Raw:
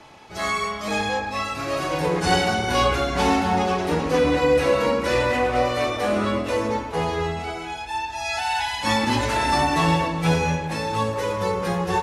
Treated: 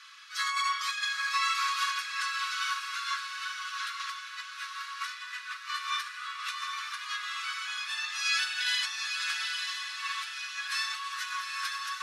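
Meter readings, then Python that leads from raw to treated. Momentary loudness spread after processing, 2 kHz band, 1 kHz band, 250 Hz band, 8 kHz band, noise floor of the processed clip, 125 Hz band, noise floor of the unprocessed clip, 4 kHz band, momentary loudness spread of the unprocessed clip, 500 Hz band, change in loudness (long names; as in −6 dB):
9 LU, −4.5 dB, −11.5 dB, below −40 dB, −3.5 dB, −43 dBFS, below −40 dB, −33 dBFS, −2.5 dB, 7 LU, below −40 dB, −9.5 dB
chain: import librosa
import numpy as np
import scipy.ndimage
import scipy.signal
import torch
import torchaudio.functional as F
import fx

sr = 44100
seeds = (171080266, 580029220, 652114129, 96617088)

y = fx.over_compress(x, sr, threshold_db=-26.0, ratio=-0.5)
y = scipy.signal.sosfilt(scipy.signal.cheby1(6, 6, 1100.0, 'highpass', fs=sr, output='sos'), y)
y = fx.echo_diffused(y, sr, ms=878, feedback_pct=42, wet_db=-4)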